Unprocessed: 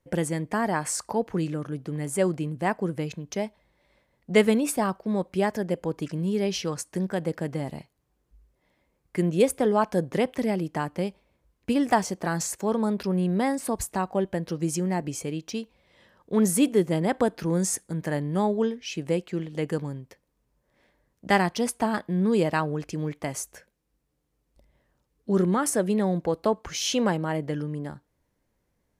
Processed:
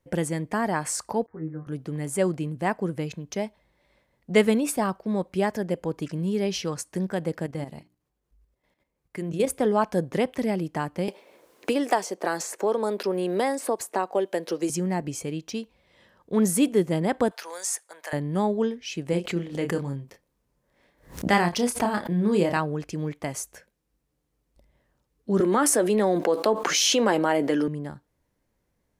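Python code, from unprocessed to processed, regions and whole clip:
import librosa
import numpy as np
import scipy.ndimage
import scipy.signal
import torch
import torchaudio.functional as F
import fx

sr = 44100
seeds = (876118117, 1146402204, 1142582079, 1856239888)

y = fx.chain(x, sr, fx.steep_lowpass(hz=2000.0, slope=72),
    fx.stiff_resonator(f0_hz=77.0, decay_s=0.24, stiffness=0.002),
    fx.upward_expand(threshold_db=-52.0, expansion=1.5), at=(1.26, 1.67))
y = fx.chain(y, sr, fx.hum_notches(base_hz=60, count=6),
    fx.level_steps(step_db=10), at=(7.46, 9.47))
y = fx.chain(y, sr, fx.highpass_res(hz=410.0, q=1.5),
    fx.band_squash(depth_pct=70), at=(11.08, 14.7))
y = fx.chain(y, sr, fx.highpass(hz=650.0, slope=24),
    fx.band_squash(depth_pct=40), at=(17.31, 18.13))
y = fx.chain(y, sr, fx.doubler(ms=29.0, db=-6.0),
    fx.pre_swell(db_per_s=140.0), at=(19.1, 22.57))
y = fx.chain(y, sr, fx.highpass(hz=250.0, slope=24),
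    fx.doubler(ms=14.0, db=-13.5),
    fx.env_flatten(amount_pct=70), at=(25.4, 27.68))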